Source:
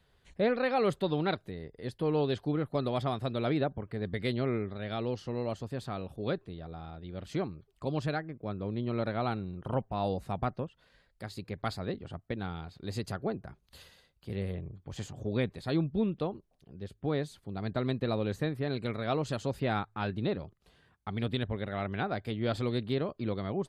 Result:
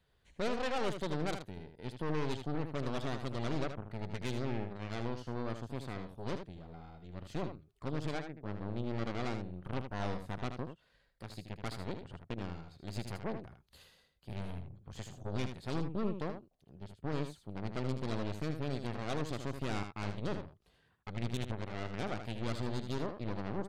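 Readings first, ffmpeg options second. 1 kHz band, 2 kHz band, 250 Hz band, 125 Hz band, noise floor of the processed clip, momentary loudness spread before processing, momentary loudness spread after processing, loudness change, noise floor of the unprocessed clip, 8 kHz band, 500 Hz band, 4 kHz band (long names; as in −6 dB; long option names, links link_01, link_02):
−6.0 dB, −4.5 dB, −5.5 dB, −4.5 dB, −72 dBFS, 12 LU, 11 LU, −6.0 dB, −70 dBFS, +0.5 dB, −7.5 dB, −4.5 dB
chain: -filter_complex "[0:a]aeval=exprs='0.158*(cos(1*acos(clip(val(0)/0.158,-1,1)))-cos(1*PI/2))+0.0316*(cos(8*acos(clip(val(0)/0.158,-1,1)))-cos(8*PI/2))':channel_layout=same,asplit=2[link_01][link_02];[link_02]asoftclip=type=tanh:threshold=-33dB,volume=-9dB[link_03];[link_01][link_03]amix=inputs=2:normalize=0,aecho=1:1:78:0.398,volume=-9dB"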